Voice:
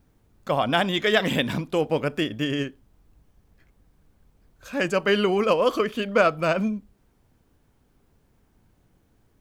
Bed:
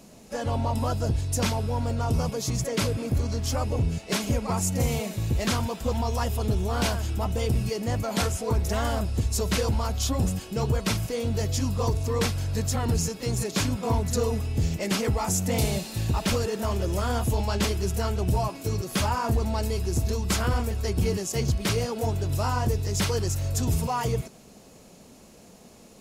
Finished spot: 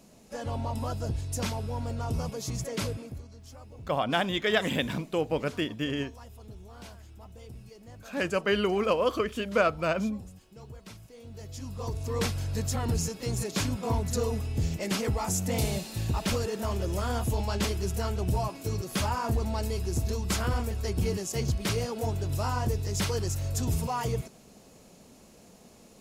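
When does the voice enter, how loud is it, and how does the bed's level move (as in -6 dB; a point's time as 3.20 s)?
3.40 s, -5.0 dB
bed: 2.90 s -6 dB
3.29 s -21 dB
11.13 s -21 dB
12.22 s -3.5 dB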